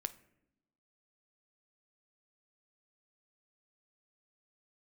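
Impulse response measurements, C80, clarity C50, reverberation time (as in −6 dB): 20.5 dB, 16.5 dB, 0.85 s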